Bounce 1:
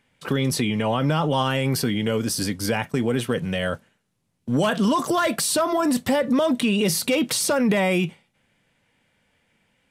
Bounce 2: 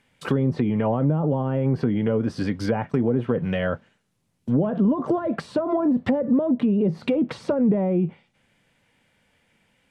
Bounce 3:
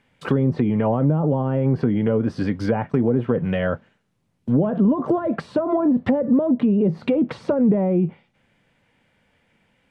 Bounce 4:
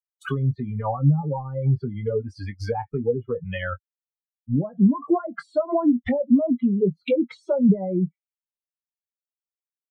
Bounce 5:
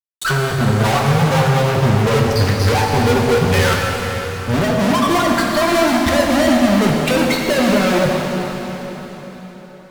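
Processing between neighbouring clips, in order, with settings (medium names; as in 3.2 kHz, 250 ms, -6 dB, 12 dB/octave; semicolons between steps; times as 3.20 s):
low-pass that closes with the level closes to 500 Hz, closed at -17 dBFS; trim +1.5 dB
treble shelf 4.2 kHz -10 dB; trim +2.5 dB
expander on every frequency bin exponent 3; doubling 21 ms -12 dB; trim +4 dB
fuzz box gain 47 dB, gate -53 dBFS; plate-style reverb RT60 4.4 s, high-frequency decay 0.9×, DRR -1.5 dB; trim -3.5 dB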